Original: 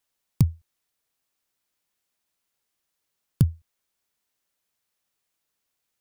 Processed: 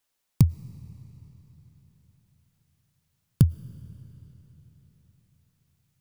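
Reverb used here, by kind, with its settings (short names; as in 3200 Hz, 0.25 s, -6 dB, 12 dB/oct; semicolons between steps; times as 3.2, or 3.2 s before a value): digital reverb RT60 4.4 s, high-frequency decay 0.9×, pre-delay 70 ms, DRR 18 dB; gain +1.5 dB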